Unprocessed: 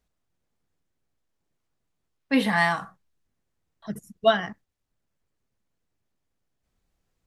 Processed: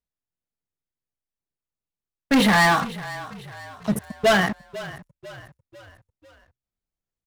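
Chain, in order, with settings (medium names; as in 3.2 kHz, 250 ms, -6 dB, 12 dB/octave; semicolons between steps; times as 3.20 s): waveshaping leveller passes 5; frequency-shifting echo 496 ms, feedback 48%, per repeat -32 Hz, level -16.5 dB; trim -6 dB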